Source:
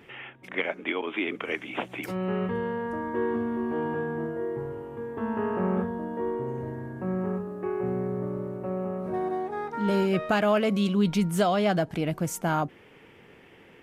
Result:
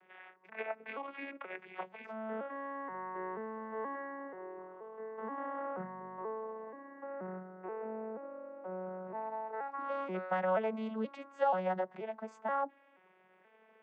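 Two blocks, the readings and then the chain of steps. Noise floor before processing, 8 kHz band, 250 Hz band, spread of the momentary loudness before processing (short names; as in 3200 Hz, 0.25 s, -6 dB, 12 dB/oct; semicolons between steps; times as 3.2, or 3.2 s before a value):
-53 dBFS, n/a, -17.0 dB, 10 LU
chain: arpeggiated vocoder minor triad, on F#3, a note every 0.48 s; three-band isolator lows -24 dB, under 560 Hz, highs -17 dB, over 2300 Hz; gain +2.5 dB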